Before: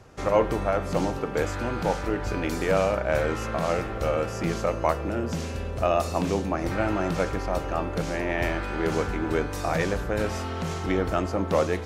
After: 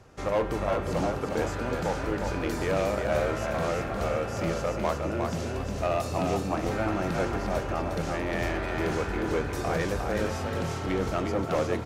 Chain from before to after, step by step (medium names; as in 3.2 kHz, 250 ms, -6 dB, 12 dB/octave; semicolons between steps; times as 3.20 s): in parallel at -6 dB: wavefolder -20 dBFS; on the sum: frequency-shifting echo 357 ms, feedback 36%, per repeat +34 Hz, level -4.5 dB; trim -6.5 dB